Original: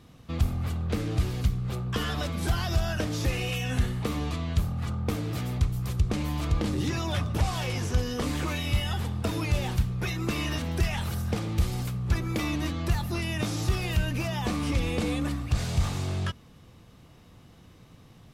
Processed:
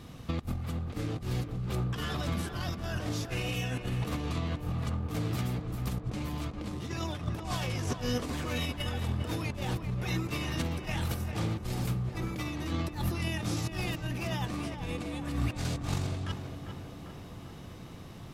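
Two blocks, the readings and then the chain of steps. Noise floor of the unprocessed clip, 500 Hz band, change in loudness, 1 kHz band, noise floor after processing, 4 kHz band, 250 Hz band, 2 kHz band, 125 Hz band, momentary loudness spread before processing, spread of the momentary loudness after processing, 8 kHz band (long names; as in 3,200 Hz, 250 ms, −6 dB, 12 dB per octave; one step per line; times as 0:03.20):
−53 dBFS, −4.0 dB, −5.0 dB, −3.5 dB, −45 dBFS, −4.0 dB, −4.0 dB, −4.5 dB, −4.5 dB, 3 LU, 5 LU, −4.5 dB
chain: compressor whose output falls as the input rises −33 dBFS, ratio −0.5
on a send: tape delay 397 ms, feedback 77%, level −6 dB, low-pass 1,800 Hz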